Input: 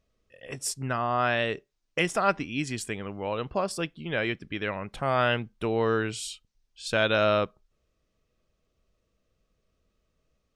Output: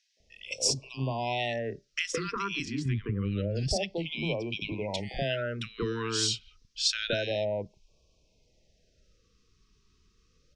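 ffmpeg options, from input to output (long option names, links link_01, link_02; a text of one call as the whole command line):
ffmpeg -i in.wav -filter_complex "[0:a]asettb=1/sr,asplit=3[link_01][link_02][link_03];[link_01]atrim=end=2.654[link_04];[link_02]atrim=start=2.65:end=3.55,asetpts=PTS-STARTPTS,afade=type=in:duration=0.004:curve=qsin,afade=type=out:start_time=0.896:duration=0.004:curve=qsin,bass=frequency=250:gain=15,treble=frequency=4000:gain=-12[link_05];[link_03]atrim=start=3.546[link_06];[link_04][link_05]acrossfade=duration=0.004:curve1=hsin:curve2=qsin[link_07];[link_07][link_06]acrossfade=duration=0.004:curve1=qsin:curve2=hsin,acompressor=threshold=-35dB:ratio=4,lowpass=frequency=5600:width_type=q:width=2.5,acrossover=split=270|1600[link_08][link_09][link_10];[link_09]adelay=170[link_11];[link_08]adelay=200[link_12];[link_12][link_11][link_10]amix=inputs=3:normalize=0,afftfilt=real='re*(1-between(b*sr/1024,620*pow(1600/620,0.5+0.5*sin(2*PI*0.28*pts/sr))/1.41,620*pow(1600/620,0.5+0.5*sin(2*PI*0.28*pts/sr))*1.41))':imag='im*(1-between(b*sr/1024,620*pow(1600/620,0.5+0.5*sin(2*PI*0.28*pts/sr))/1.41,620*pow(1600/620,0.5+0.5*sin(2*PI*0.28*pts/sr))*1.41))':win_size=1024:overlap=0.75,volume=7.5dB" out.wav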